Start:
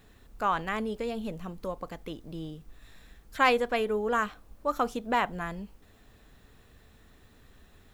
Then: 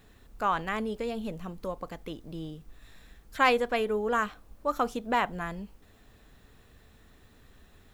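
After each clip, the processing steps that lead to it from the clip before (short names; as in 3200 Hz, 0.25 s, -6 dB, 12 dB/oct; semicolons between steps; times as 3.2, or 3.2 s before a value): nothing audible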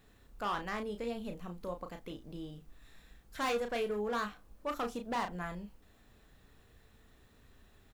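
hard clip -24.5 dBFS, distortion -9 dB; doubler 34 ms -6.5 dB; gain -6 dB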